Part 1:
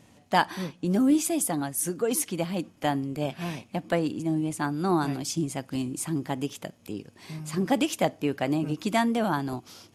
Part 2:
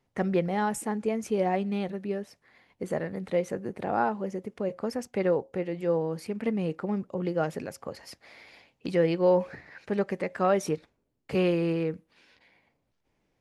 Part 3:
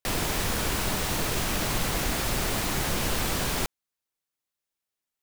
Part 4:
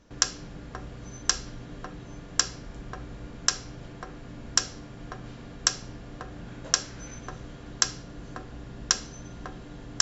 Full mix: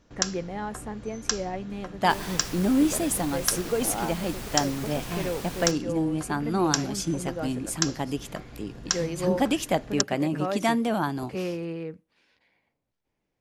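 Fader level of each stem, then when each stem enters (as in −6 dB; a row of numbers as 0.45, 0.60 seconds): 0.0, −6.0, −10.5, −2.5 decibels; 1.70, 0.00, 2.05, 0.00 seconds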